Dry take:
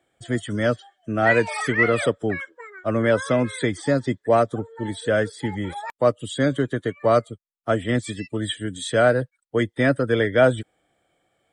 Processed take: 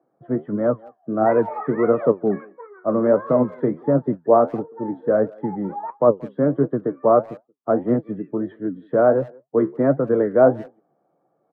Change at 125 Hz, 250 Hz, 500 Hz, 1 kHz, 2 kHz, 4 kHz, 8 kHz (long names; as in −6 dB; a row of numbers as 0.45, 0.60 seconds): −3.0 dB, +3.0 dB, +3.0 dB, +2.0 dB, −13.0 dB, below −30 dB, below −40 dB